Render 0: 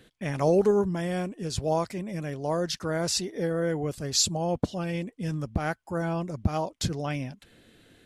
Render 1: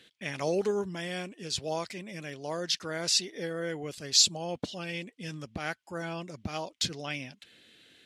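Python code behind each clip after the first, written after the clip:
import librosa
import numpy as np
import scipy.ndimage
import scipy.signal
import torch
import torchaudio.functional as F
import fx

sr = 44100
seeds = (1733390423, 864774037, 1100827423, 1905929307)

y = fx.weighting(x, sr, curve='D')
y = F.gain(torch.from_numpy(y), -6.5).numpy()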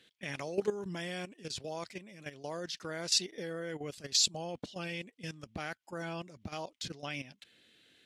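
y = fx.level_steps(x, sr, step_db=13)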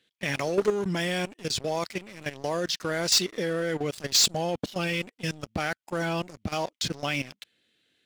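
y = fx.leveller(x, sr, passes=3)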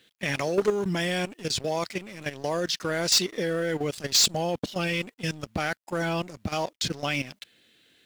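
y = fx.law_mismatch(x, sr, coded='mu')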